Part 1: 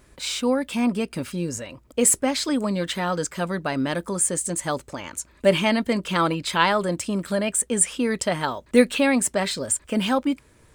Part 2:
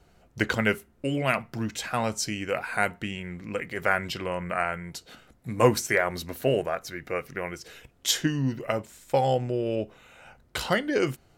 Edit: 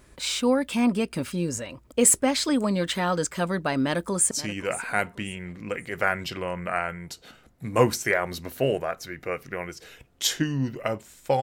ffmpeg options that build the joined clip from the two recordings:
ffmpeg -i cue0.wav -i cue1.wav -filter_complex "[0:a]apad=whole_dur=11.42,atrim=end=11.42,atrim=end=4.312[link_01];[1:a]atrim=start=2.148:end=9.26[link_02];[link_01][link_02]acrossfade=duration=0.004:curve1=hsin:curve2=hsin,asplit=2[link_03][link_04];[link_04]afade=type=in:start_time=3.84:duration=0.01,afade=type=out:start_time=4.31:duration=0.01,aecho=0:1:530|1060|1590:0.177828|0.0533484|0.0160045[link_05];[link_03][link_05]amix=inputs=2:normalize=0" out.wav

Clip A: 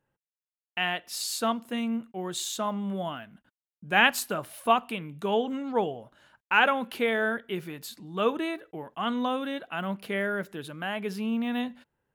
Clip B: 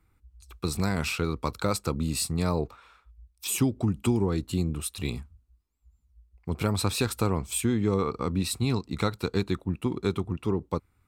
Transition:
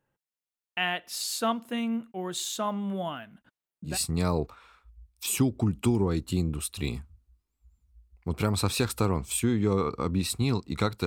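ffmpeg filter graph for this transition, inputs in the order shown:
ffmpeg -i cue0.wav -i cue1.wav -filter_complex "[0:a]asettb=1/sr,asplit=3[link_01][link_02][link_03];[link_01]atrim=end=3.464[link_04];[link_02]atrim=start=3.46:end=3.98,asetpts=PTS-STARTPTS,afade=type=in:duration=0.004:curve=qsin,afade=type=out:start_time=0.516:duration=0.004:curve=qsin,aphaser=in_gain=1:out_gain=1:delay=1.9:decay=0.47:speed=0.21:type=sinusoidal[link_05];[link_03]atrim=start=3.976[link_06];[link_04][link_05]acrossfade=duration=0.004:curve1=hsin:curve2=qsin[link_07];[link_07][link_06]acrossfade=duration=0.004:curve1=qsin:curve2=hsin,apad=whole_dur=11.06,atrim=end=11.06,atrim=end=3.98,asetpts=PTS-STARTPTS[link_08];[1:a]atrim=start=2.05:end=9.27,asetpts=PTS-STARTPTS[link_09];[link_08][link_09]acrossfade=duration=0.14:curve1=tri:curve2=tri" out.wav

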